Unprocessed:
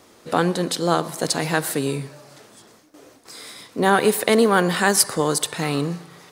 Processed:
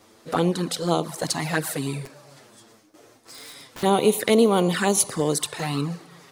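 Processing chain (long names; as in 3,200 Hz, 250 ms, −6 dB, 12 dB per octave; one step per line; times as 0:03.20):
flanger swept by the level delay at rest 9.8 ms, full sweep at −15 dBFS
0:02.05–0:03.83: wrap-around overflow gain 33 dB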